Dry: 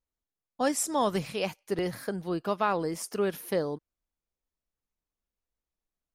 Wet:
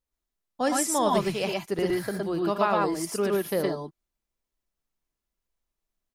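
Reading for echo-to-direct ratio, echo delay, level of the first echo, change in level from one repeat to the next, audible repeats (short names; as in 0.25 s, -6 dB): 0.0 dB, 59 ms, -15.5 dB, no steady repeat, 2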